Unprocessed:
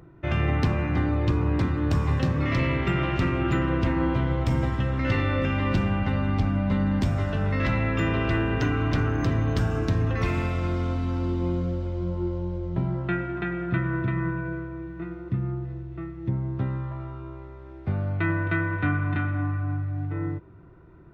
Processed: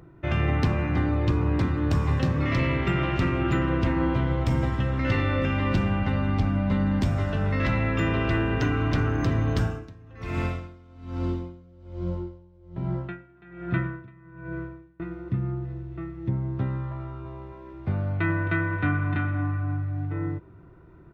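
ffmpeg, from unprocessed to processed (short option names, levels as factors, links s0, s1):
-filter_complex "[0:a]asettb=1/sr,asplit=3[s0][s1][s2];[s0]atrim=end=9.604[s3];[s1]atrim=start=9.6:end=15,asetpts=PTS-STARTPTS,afade=t=in:d=0.004:c=qsin,afade=t=out:st=5.396:d=0.004:c=qsin,aeval=exprs='val(0)*pow(10,-25*(0.5-0.5*cos(2*PI*1.2*n/s))/20)':c=same[s4];[s2]atrim=start=14.996[s5];[s3][s4]acrossfade=d=0.004:c1=hsin:c2=qsin[s6];[s6][s5]acrossfade=d=0.004:c1=qsin:c2=hsin,asplit=2[s7][s8];[s8]afade=t=in:st=16.98:d=0.01,afade=t=out:st=17.46:d=0.01,aecho=0:1:270|540|810|1080|1350|1620|1890:0.562341|0.309288|0.170108|0.0935595|0.0514577|0.0283018|0.015566[s9];[s7][s9]amix=inputs=2:normalize=0"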